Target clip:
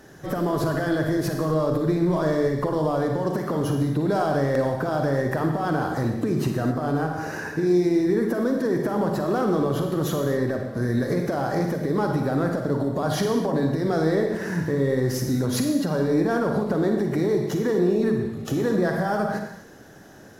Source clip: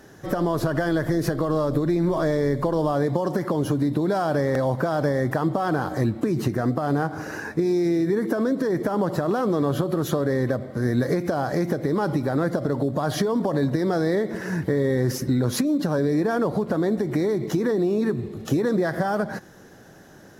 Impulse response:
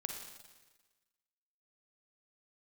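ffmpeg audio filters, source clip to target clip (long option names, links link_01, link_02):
-filter_complex "[0:a]alimiter=limit=-14dB:level=0:latency=1:release=147,acontrast=89[link_01];[1:a]atrim=start_sample=2205,afade=type=out:start_time=0.32:duration=0.01,atrim=end_sample=14553[link_02];[link_01][link_02]afir=irnorm=-1:irlink=0,volume=-5.5dB"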